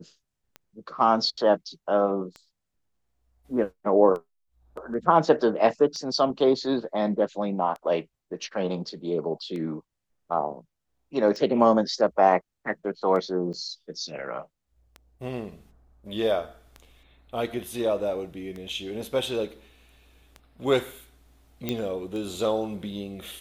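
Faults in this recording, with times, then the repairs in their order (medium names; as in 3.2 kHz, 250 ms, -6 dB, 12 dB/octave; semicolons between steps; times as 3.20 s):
tick 33 1/3 rpm -25 dBFS
13.53–13.54 s: dropout 7.4 ms
21.69 s: pop -13 dBFS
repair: de-click; interpolate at 13.53 s, 7.4 ms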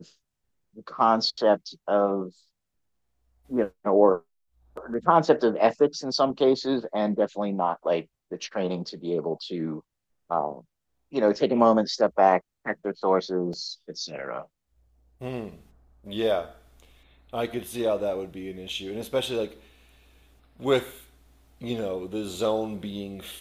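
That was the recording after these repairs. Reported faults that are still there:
nothing left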